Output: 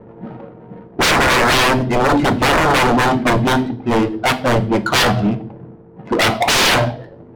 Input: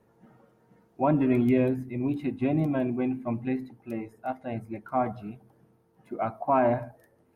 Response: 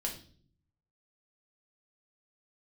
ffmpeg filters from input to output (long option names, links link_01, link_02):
-filter_complex "[0:a]aeval=exprs='0.224*sin(PI/2*8.91*val(0)/0.224)':channel_layout=same,adynamicsmooth=sensitivity=2.5:basefreq=560,asplit=2[link_01][link_02];[1:a]atrim=start_sample=2205,lowshelf=frequency=160:gain=-9.5[link_03];[link_02][link_03]afir=irnorm=-1:irlink=0,volume=-6.5dB[link_04];[link_01][link_04]amix=inputs=2:normalize=0"